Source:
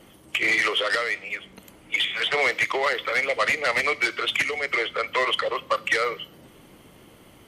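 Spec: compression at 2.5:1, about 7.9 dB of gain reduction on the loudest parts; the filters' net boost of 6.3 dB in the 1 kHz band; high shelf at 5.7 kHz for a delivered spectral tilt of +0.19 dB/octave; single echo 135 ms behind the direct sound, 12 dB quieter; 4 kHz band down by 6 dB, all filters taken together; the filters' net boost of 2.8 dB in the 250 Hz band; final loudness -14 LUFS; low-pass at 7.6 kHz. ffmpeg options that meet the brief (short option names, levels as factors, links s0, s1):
-af "lowpass=7600,equalizer=f=250:t=o:g=3.5,equalizer=f=1000:t=o:g=8.5,equalizer=f=4000:t=o:g=-6.5,highshelf=f=5700:g=-8,acompressor=threshold=0.0501:ratio=2.5,aecho=1:1:135:0.251,volume=4.73"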